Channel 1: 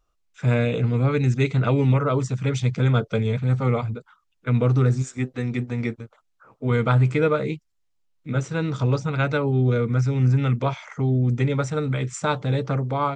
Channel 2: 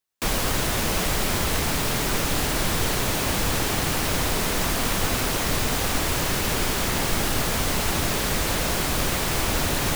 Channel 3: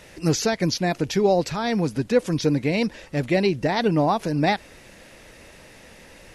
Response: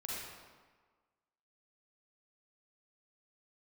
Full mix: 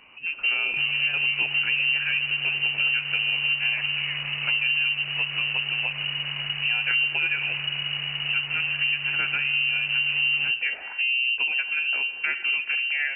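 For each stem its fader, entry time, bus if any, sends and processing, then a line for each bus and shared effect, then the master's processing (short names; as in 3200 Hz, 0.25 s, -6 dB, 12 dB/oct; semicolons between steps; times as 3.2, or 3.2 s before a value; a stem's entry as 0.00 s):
0.0 dB, 0.00 s, send -12 dB, dry
-6.0 dB, 0.55 s, send -14.5 dB, sample sorter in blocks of 16 samples
-4.0 dB, 0.00 s, send -17.5 dB, auto duck -10 dB, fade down 0.20 s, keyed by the first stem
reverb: on, RT60 1.5 s, pre-delay 36 ms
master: high shelf 2200 Hz -9.5 dB; inverted band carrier 2900 Hz; compressor 2.5:1, threshold -24 dBFS, peak gain reduction 8 dB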